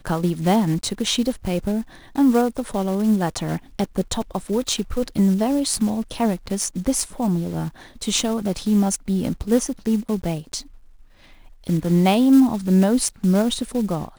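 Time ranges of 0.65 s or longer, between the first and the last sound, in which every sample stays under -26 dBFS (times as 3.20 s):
10.60–11.67 s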